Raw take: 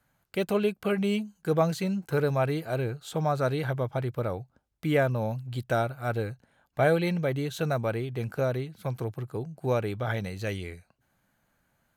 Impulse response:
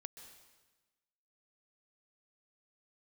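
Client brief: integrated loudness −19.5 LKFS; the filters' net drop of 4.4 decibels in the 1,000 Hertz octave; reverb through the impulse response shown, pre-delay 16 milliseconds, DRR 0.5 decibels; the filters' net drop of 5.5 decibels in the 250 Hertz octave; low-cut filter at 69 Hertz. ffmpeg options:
-filter_complex "[0:a]highpass=69,equalizer=frequency=250:width_type=o:gain=-8.5,equalizer=frequency=1000:width_type=o:gain=-6,asplit=2[link_01][link_02];[1:a]atrim=start_sample=2205,adelay=16[link_03];[link_02][link_03]afir=irnorm=-1:irlink=0,volume=4.5dB[link_04];[link_01][link_04]amix=inputs=2:normalize=0,volume=10dB"

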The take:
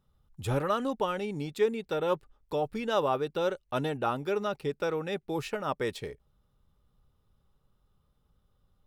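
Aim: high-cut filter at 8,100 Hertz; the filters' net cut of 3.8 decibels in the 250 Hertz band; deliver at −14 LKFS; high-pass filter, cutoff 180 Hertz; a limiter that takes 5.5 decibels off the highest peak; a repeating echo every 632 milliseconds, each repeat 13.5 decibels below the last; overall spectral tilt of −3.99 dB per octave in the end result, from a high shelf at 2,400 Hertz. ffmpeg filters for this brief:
ffmpeg -i in.wav -af "highpass=180,lowpass=8100,equalizer=frequency=250:width_type=o:gain=-3.5,highshelf=frequency=2400:gain=-4,alimiter=limit=-21.5dB:level=0:latency=1,aecho=1:1:632|1264:0.211|0.0444,volume=20dB" out.wav

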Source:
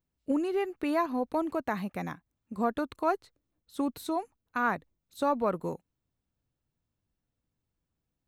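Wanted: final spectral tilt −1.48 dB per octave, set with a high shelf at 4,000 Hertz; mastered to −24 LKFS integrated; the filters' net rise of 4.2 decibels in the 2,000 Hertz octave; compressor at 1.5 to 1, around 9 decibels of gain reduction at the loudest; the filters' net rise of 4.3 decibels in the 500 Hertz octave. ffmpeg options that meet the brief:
ffmpeg -i in.wav -af "equalizer=frequency=500:width_type=o:gain=5.5,equalizer=frequency=2000:width_type=o:gain=7.5,highshelf=frequency=4000:gain=-8.5,acompressor=threshold=-45dB:ratio=1.5,volume=13dB" out.wav

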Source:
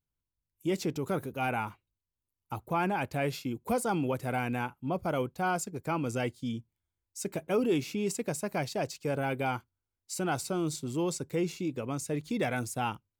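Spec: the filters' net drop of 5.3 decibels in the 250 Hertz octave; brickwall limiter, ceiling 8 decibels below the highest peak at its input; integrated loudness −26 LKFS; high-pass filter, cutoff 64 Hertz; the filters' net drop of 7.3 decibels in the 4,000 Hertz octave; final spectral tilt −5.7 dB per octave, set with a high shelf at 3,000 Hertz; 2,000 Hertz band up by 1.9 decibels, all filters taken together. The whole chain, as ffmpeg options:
ffmpeg -i in.wav -af "highpass=64,equalizer=frequency=250:width_type=o:gain=-7.5,equalizer=frequency=2000:width_type=o:gain=7.5,highshelf=frequency=3000:gain=-7.5,equalizer=frequency=4000:width_type=o:gain=-7.5,volume=12dB,alimiter=limit=-14dB:level=0:latency=1" out.wav

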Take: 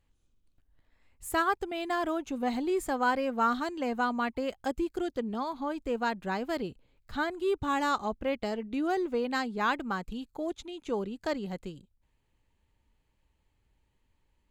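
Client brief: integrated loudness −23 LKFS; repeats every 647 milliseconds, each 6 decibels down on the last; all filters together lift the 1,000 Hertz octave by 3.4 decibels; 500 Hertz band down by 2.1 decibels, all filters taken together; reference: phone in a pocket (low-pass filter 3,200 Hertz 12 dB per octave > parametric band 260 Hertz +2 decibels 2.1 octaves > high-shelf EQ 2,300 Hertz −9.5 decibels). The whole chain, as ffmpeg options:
ffmpeg -i in.wav -af "lowpass=3200,equalizer=frequency=260:width_type=o:width=2.1:gain=2,equalizer=frequency=500:width_type=o:gain=-6,equalizer=frequency=1000:width_type=o:gain=7.5,highshelf=frequency=2300:gain=-9.5,aecho=1:1:647|1294|1941|2588|3235|3882:0.501|0.251|0.125|0.0626|0.0313|0.0157,volume=6.5dB" out.wav

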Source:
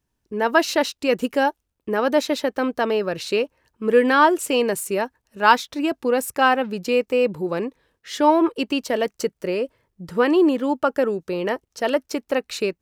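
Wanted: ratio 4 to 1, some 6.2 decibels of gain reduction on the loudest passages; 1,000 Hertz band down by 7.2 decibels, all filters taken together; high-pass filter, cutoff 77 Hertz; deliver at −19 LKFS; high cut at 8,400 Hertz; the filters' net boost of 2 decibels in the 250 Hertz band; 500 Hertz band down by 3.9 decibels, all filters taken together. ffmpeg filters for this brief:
ffmpeg -i in.wav -af "highpass=77,lowpass=8400,equalizer=frequency=250:width_type=o:gain=4.5,equalizer=frequency=500:width_type=o:gain=-4,equalizer=frequency=1000:width_type=o:gain=-8,acompressor=threshold=-21dB:ratio=4,volume=8dB" out.wav

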